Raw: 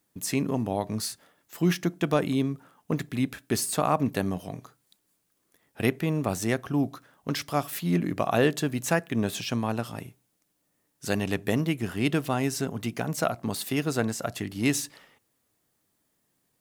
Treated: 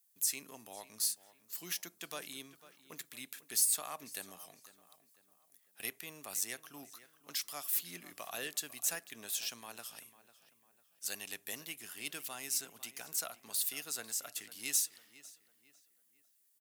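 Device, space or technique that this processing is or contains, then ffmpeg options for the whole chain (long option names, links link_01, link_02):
one-band saturation: -filter_complex "[0:a]aderivative,acrossover=split=600|3300[link_01][link_02][link_03];[link_02]asoftclip=type=tanh:threshold=-36dB[link_04];[link_01][link_04][link_03]amix=inputs=3:normalize=0,asplit=2[link_05][link_06];[link_06]adelay=499,lowpass=frequency=3600:poles=1,volume=-16dB,asplit=2[link_07][link_08];[link_08]adelay=499,lowpass=frequency=3600:poles=1,volume=0.41,asplit=2[link_09][link_10];[link_10]adelay=499,lowpass=frequency=3600:poles=1,volume=0.41,asplit=2[link_11][link_12];[link_12]adelay=499,lowpass=frequency=3600:poles=1,volume=0.41[link_13];[link_05][link_07][link_09][link_11][link_13]amix=inputs=5:normalize=0"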